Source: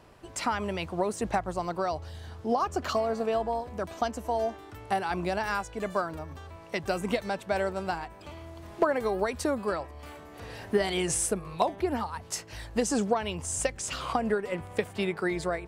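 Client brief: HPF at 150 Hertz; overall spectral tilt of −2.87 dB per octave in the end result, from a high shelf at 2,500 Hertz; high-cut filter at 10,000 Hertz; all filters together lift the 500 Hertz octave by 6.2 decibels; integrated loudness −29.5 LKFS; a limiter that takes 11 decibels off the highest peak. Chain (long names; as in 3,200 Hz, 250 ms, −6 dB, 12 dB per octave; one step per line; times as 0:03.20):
high-pass filter 150 Hz
low-pass filter 10,000 Hz
parametric band 500 Hz +7.5 dB
high-shelf EQ 2,500 Hz +8 dB
level −1.5 dB
brickwall limiter −18 dBFS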